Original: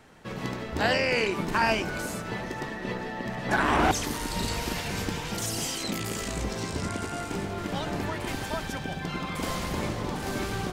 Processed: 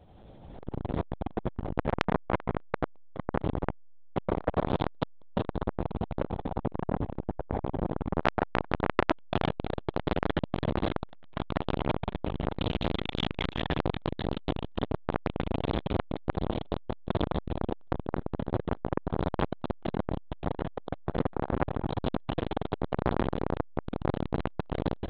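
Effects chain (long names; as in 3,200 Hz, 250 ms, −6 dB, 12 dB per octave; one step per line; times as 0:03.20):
rotating-speaker cabinet horn 6.7 Hz, later 1.2 Hz, at 0:03.66
echo with a time of its own for lows and highs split 1,000 Hz, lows 784 ms, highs 223 ms, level −13 dB
wrong playback speed 78 rpm record played at 33 rpm
linear-prediction vocoder at 8 kHz pitch kept
convolution reverb RT60 4.0 s, pre-delay 61 ms, DRR 7.5 dB
automatic gain control gain up to 10.5 dB
flat-topped bell 1,700 Hz −8.5 dB
saturating transformer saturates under 2,400 Hz
level +3.5 dB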